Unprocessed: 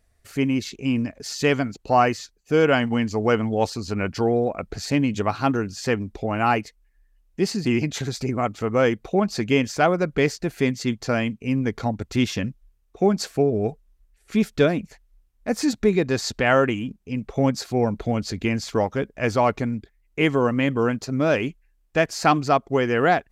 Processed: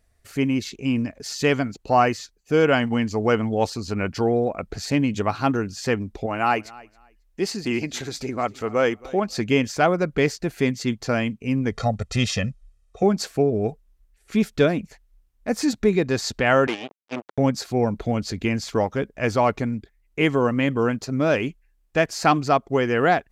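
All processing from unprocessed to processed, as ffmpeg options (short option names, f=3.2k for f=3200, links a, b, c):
-filter_complex "[0:a]asettb=1/sr,asplit=3[a][b][c];[a]atrim=end=6.264[d];[b]atrim=start=6.26:end=9.37,asetpts=PTS-STARTPTS,afade=t=in:d=0.004:c=qsin,afade=t=out:st=3.106:d=0.004:c=qsin,equalizer=f=140:t=o:w=1.5:g=-8.5,aecho=1:1:271|542:0.0794|0.0159,atrim=end_sample=137151[e];[c]atrim=start=9.366[f];[d][e]acrossfade=d=0.004:c1=hsin:c2=qsin[g];[g][f]acrossfade=d=0.004:c1=qsin:c2=hsin,asettb=1/sr,asplit=3[h][i][j];[h]atrim=end=11.714[k];[i]atrim=start=11.71:end=13.03,asetpts=PTS-STARTPTS,afade=t=in:d=0.004:c=qsin,afade=t=out:st=1.316:d=0.004:c=qsin,lowpass=f=10k:w=0.5412,lowpass=f=10k:w=1.3066,highshelf=f=4.7k:g=4.5,aecho=1:1:1.6:0.82,atrim=end_sample=58212[l];[j]atrim=start=13.026[m];[k][l]acrossfade=d=0.004:c1=hsin:c2=qsin[n];[n][m]acrossfade=d=0.004:c1=qsin:c2=hsin,asettb=1/sr,asplit=3[o][p][q];[o]atrim=end=16.674[r];[p]atrim=start=16.67:end=17.38,asetpts=PTS-STARTPTS,afade=t=in:d=0.004:c=qsin,afade=t=out:st=0.706:d=0.004:c=qsin,acrusher=bits=3:mix=0:aa=0.5,highpass=290,lowpass=5.3k[s];[q]atrim=start=17.376[t];[r][s]acrossfade=d=0.004:c1=hsin:c2=qsin[u];[u][t]acrossfade=d=0.004:c1=qsin:c2=hsin"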